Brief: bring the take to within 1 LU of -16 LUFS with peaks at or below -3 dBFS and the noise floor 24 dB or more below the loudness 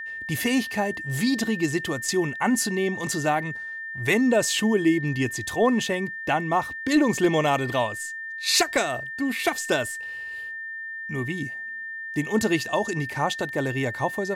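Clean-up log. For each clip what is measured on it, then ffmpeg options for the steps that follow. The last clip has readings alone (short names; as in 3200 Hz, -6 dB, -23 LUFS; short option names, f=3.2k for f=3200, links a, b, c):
steady tone 1800 Hz; tone level -32 dBFS; loudness -25.0 LUFS; peak -9.5 dBFS; loudness target -16.0 LUFS
-> -af "bandreject=f=1.8k:w=30"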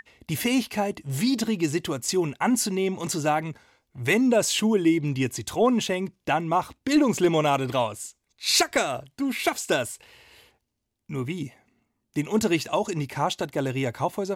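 steady tone none; loudness -25.0 LUFS; peak -9.5 dBFS; loudness target -16.0 LUFS
-> -af "volume=9dB,alimiter=limit=-3dB:level=0:latency=1"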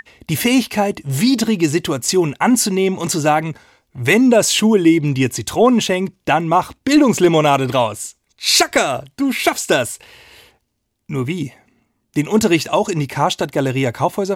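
loudness -16.5 LUFS; peak -3.0 dBFS; noise floor -69 dBFS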